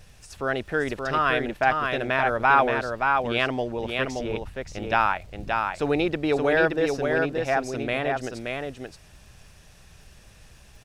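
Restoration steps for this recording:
click removal
echo removal 575 ms −4 dB

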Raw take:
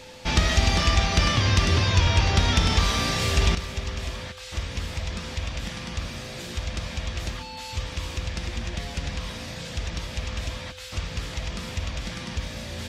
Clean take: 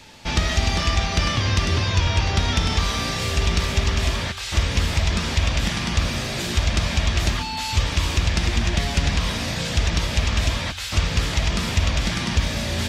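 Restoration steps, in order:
notch filter 510 Hz, Q 30
level correction +10 dB, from 0:03.55

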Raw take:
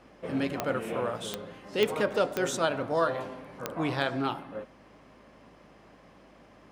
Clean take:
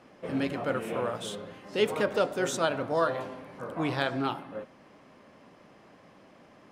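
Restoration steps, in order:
click removal
hum removal 52.1 Hz, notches 3

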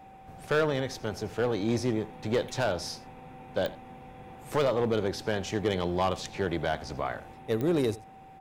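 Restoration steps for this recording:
clipped peaks rebuilt −19 dBFS
click removal
notch filter 770 Hz, Q 30
echo removal 84 ms −19.5 dB

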